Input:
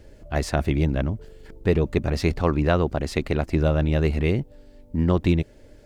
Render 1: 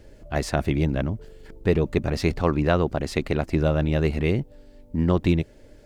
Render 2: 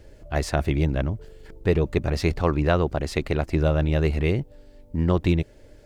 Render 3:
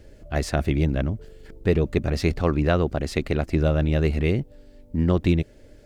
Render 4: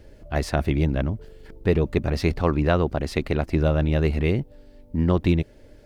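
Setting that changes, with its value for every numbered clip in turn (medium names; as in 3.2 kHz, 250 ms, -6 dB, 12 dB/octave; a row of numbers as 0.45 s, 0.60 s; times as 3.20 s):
peaking EQ, frequency: 70 Hz, 230 Hz, 940 Hz, 7.3 kHz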